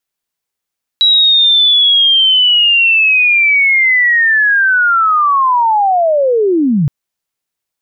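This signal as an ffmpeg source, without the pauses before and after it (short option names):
-f lavfi -i "aevalsrc='pow(10,(-5.5-3*t/5.87)/20)*sin(2*PI*(3900*t-3770*t*t/(2*5.87)))':d=5.87:s=44100"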